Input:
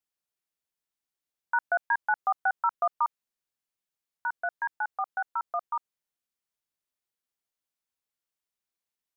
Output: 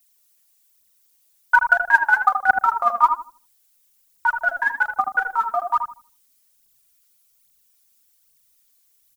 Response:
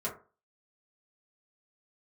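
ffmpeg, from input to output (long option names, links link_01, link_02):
-filter_complex "[0:a]asubboost=boost=4:cutoff=240,crystalizer=i=8:c=0,aphaser=in_gain=1:out_gain=1:delay=4.6:decay=0.69:speed=1.2:type=triangular,asplit=2[link_01][link_02];[link_02]adelay=79,lowpass=frequency=830:poles=1,volume=-3dB,asplit=2[link_03][link_04];[link_04]adelay=79,lowpass=frequency=830:poles=1,volume=0.37,asplit=2[link_05][link_06];[link_06]adelay=79,lowpass=frequency=830:poles=1,volume=0.37,asplit=2[link_07][link_08];[link_08]adelay=79,lowpass=frequency=830:poles=1,volume=0.37,asplit=2[link_09][link_10];[link_10]adelay=79,lowpass=frequency=830:poles=1,volume=0.37[link_11];[link_01][link_03][link_05][link_07][link_09][link_11]amix=inputs=6:normalize=0,volume=3.5dB"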